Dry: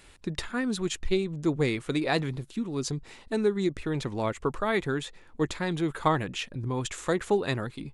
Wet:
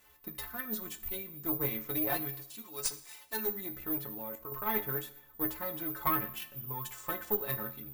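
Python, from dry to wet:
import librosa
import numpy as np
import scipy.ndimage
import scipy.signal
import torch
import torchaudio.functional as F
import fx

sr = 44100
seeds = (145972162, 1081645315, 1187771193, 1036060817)

y = fx.tilt_eq(x, sr, slope=4.5, at=(2.28, 3.46), fade=0.02)
y = fx.stiff_resonator(y, sr, f0_hz=64.0, decay_s=0.46, stiffness=0.03)
y = fx.quant_companded(y, sr, bits=8)
y = (np.kron(y[::3], np.eye(3)[0]) * 3)[:len(y)]
y = fx.level_steps(y, sr, step_db=13, at=(3.98, 4.52))
y = fx.peak_eq(y, sr, hz=1000.0, db=8.5, octaves=1.5)
y = fx.tube_stage(y, sr, drive_db=18.0, bias=0.65)
y = fx.rev_schroeder(y, sr, rt60_s=0.78, comb_ms=28, drr_db=13.5)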